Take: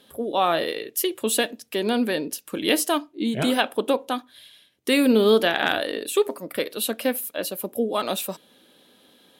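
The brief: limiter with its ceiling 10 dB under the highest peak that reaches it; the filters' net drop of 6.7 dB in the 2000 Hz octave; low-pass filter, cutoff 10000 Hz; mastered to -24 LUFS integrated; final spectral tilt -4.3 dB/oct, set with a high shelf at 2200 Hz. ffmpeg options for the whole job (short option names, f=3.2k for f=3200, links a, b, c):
-af "lowpass=10k,equalizer=f=2k:t=o:g=-6,highshelf=f=2.2k:g=-5.5,volume=5.5dB,alimiter=limit=-12.5dB:level=0:latency=1"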